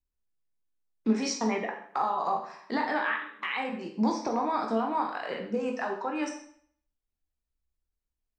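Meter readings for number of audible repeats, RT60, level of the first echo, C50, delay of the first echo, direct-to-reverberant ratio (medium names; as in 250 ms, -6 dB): no echo, 0.60 s, no echo, 7.0 dB, no echo, 1.0 dB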